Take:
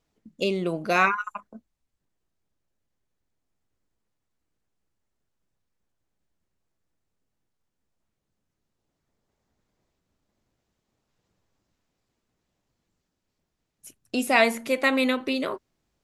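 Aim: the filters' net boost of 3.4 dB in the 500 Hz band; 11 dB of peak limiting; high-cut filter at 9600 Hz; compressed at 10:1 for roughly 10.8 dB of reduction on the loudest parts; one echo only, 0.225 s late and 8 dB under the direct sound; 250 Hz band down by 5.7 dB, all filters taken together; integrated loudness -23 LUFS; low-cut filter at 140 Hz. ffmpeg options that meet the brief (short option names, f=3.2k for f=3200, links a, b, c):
-af "highpass=140,lowpass=9.6k,equalizer=f=250:t=o:g=-8,equalizer=f=500:t=o:g=6,acompressor=threshold=-23dB:ratio=10,alimiter=limit=-23.5dB:level=0:latency=1,aecho=1:1:225:0.398,volume=11dB"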